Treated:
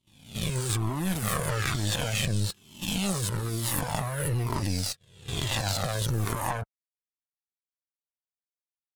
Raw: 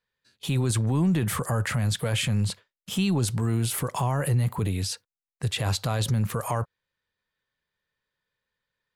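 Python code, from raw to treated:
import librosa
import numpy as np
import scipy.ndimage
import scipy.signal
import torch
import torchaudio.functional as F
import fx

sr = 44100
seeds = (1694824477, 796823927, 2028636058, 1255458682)

p1 = fx.spec_swells(x, sr, rise_s=1.11)
p2 = fx.level_steps(p1, sr, step_db=15)
p3 = p1 + (p2 * 10.0 ** (3.0 / 20.0))
p4 = fx.clip_asym(p3, sr, top_db=-20.5, bottom_db=-10.5)
p5 = fx.power_curve(p4, sr, exponent=2.0)
p6 = fx.comb_cascade(p5, sr, direction='falling', hz=1.1)
y = p6 * 10.0 ** (3.5 / 20.0)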